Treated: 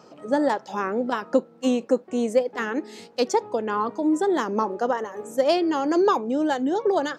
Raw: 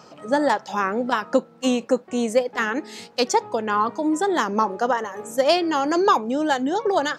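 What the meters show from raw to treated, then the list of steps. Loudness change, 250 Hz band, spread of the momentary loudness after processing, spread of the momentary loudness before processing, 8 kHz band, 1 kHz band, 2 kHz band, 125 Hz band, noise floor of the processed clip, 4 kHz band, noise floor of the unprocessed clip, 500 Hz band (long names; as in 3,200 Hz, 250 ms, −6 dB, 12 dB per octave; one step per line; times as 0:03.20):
−2.0 dB, 0.0 dB, 6 LU, 5 LU, −6.5 dB, −4.5 dB, −6.0 dB, can't be measured, −51 dBFS, −6.5 dB, −49 dBFS, −0.5 dB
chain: parametric band 360 Hz +7.5 dB 1.8 octaves
level −6.5 dB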